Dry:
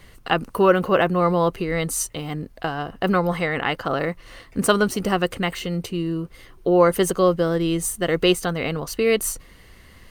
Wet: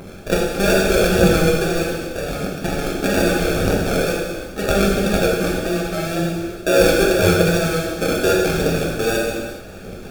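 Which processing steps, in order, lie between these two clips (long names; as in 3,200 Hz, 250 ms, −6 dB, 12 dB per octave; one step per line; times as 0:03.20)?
compressor on every frequency bin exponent 0.6
Butterworth high-pass 160 Hz 36 dB per octave
high-shelf EQ 3,700 Hz −11.5 dB
sample-rate reduction 1,000 Hz, jitter 0%
phase shifter 0.81 Hz, delay 4 ms, feedback 46%
tape wow and flutter 61 cents
reverb whose tail is shaped and stops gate 470 ms falling, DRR −4 dB
level −5.5 dB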